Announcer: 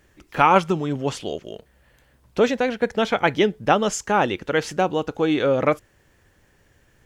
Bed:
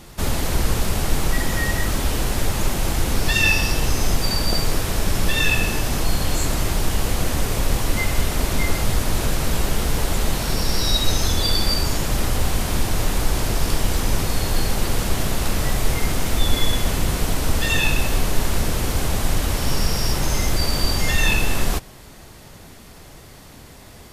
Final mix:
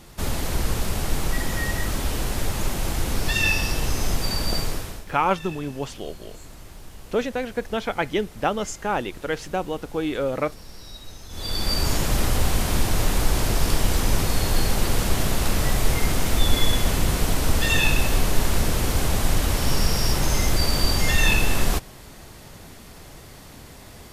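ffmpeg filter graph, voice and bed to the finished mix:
-filter_complex "[0:a]adelay=4750,volume=0.531[s0];[1:a]volume=7.08,afade=t=out:st=4.58:d=0.47:silence=0.133352,afade=t=in:st=11.29:d=0.62:silence=0.0891251[s1];[s0][s1]amix=inputs=2:normalize=0"

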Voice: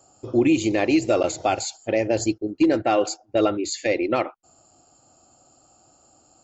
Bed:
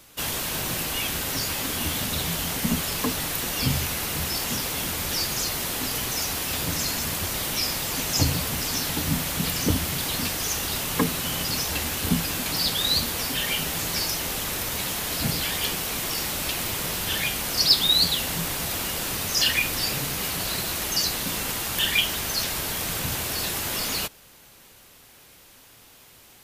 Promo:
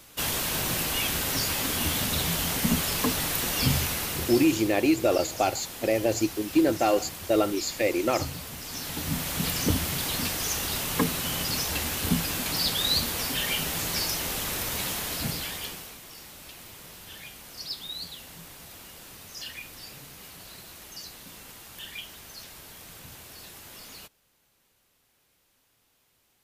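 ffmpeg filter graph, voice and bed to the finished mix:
-filter_complex "[0:a]adelay=3950,volume=0.708[s0];[1:a]volume=2.99,afade=t=out:st=3.75:d=0.98:silence=0.266073,afade=t=in:st=8.63:d=0.83:silence=0.334965,afade=t=out:st=14.87:d=1.12:silence=0.16788[s1];[s0][s1]amix=inputs=2:normalize=0"

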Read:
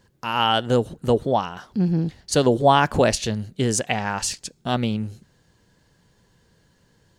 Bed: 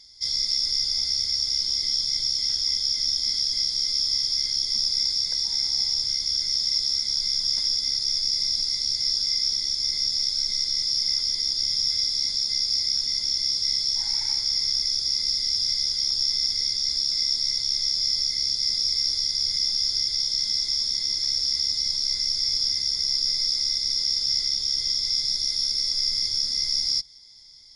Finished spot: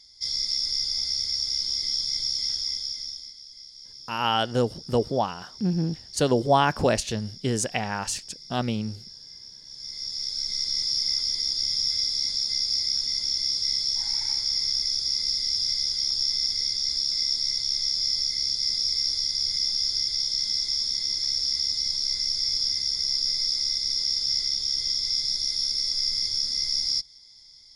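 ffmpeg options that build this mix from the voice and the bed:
-filter_complex "[0:a]adelay=3850,volume=0.631[s0];[1:a]volume=6.68,afade=t=out:st=2.45:d=0.89:silence=0.125893,afade=t=in:st=9.64:d=1.12:silence=0.112202[s1];[s0][s1]amix=inputs=2:normalize=0"

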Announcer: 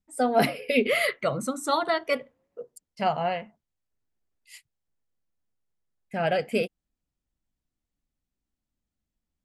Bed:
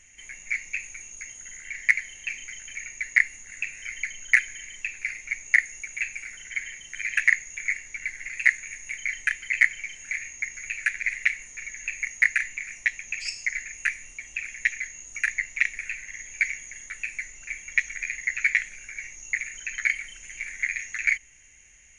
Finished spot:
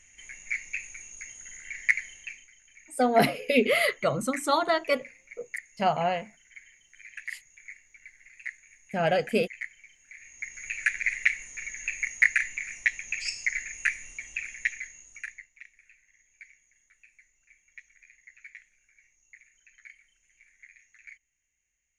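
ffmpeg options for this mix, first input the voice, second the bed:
-filter_complex "[0:a]adelay=2800,volume=1.06[s0];[1:a]volume=5.31,afade=t=out:st=2.04:d=0.45:silence=0.177828,afade=t=in:st=10.15:d=0.71:silence=0.133352,afade=t=out:st=14.17:d=1.32:silence=0.0562341[s1];[s0][s1]amix=inputs=2:normalize=0"

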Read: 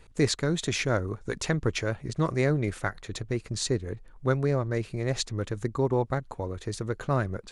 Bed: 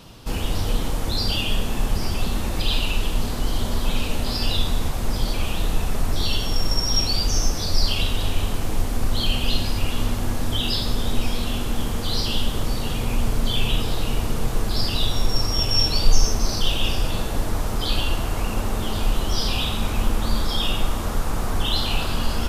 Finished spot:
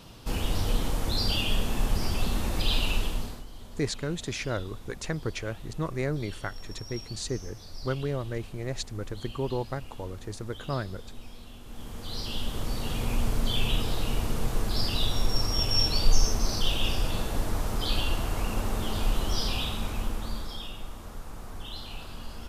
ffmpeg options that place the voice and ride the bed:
-filter_complex "[0:a]adelay=3600,volume=0.562[s0];[1:a]volume=4.22,afade=t=out:st=2.94:d=0.51:silence=0.133352,afade=t=in:st=11.62:d=1.43:silence=0.149624,afade=t=out:st=19.28:d=1.43:silence=0.251189[s1];[s0][s1]amix=inputs=2:normalize=0"

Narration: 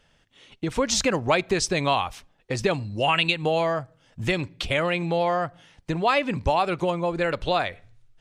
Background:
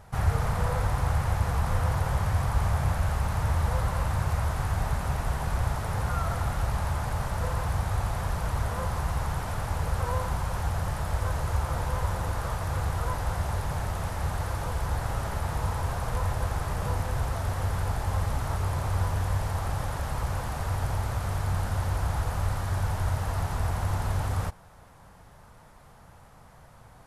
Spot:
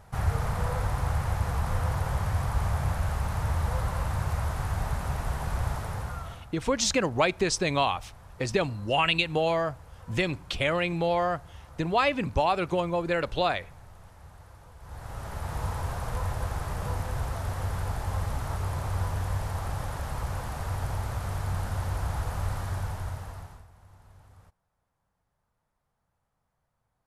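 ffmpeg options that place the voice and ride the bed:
-filter_complex "[0:a]adelay=5900,volume=0.75[s0];[1:a]volume=5.96,afade=t=out:st=5.75:d=0.72:silence=0.125893,afade=t=in:st=14.79:d=0.83:silence=0.133352,afade=t=out:st=22.62:d=1.04:silence=0.0630957[s1];[s0][s1]amix=inputs=2:normalize=0"

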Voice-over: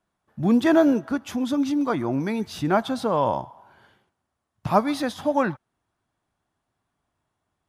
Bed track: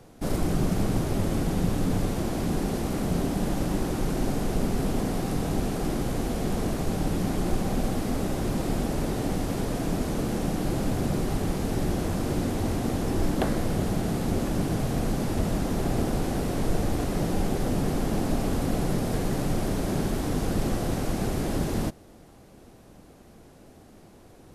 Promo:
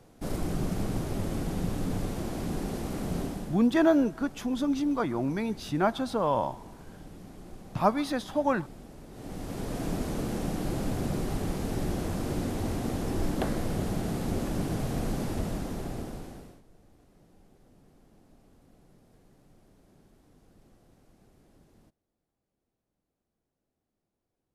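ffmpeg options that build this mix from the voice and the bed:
-filter_complex "[0:a]adelay=3100,volume=0.596[s0];[1:a]volume=3.35,afade=t=out:st=3.21:d=0.39:silence=0.188365,afade=t=in:st=9.1:d=0.74:silence=0.158489,afade=t=out:st=15.2:d=1.42:silence=0.0334965[s1];[s0][s1]amix=inputs=2:normalize=0"

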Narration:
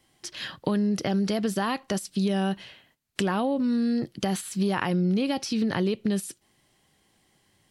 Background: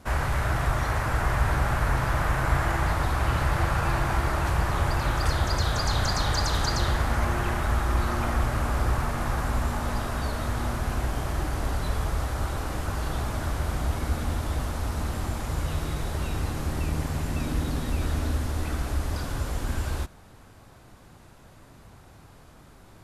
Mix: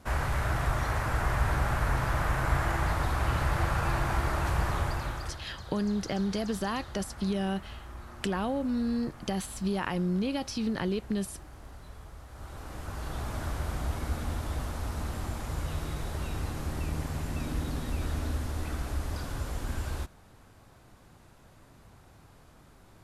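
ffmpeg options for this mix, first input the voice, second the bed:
-filter_complex "[0:a]adelay=5050,volume=0.562[s0];[1:a]volume=3.55,afade=t=out:st=4.69:d=0.73:silence=0.158489,afade=t=in:st=12.27:d=1.12:silence=0.188365[s1];[s0][s1]amix=inputs=2:normalize=0"

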